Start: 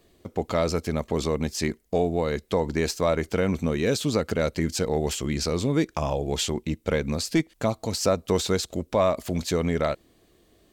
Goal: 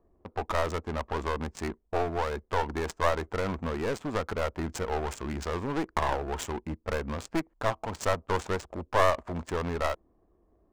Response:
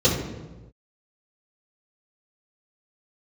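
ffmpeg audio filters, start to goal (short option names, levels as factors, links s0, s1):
-af "equalizer=f=125:t=o:w=1:g=-10,equalizer=f=250:t=o:w=1:g=-4,equalizer=f=500:t=o:w=1:g=-4,equalizer=f=1000:t=o:w=1:g=10,equalizer=f=4000:t=o:w=1:g=-12,equalizer=f=8000:t=o:w=1:g=8,adynamicsmooth=sensitivity=4:basefreq=540,aeval=exprs='clip(val(0),-1,0.0299)':c=same"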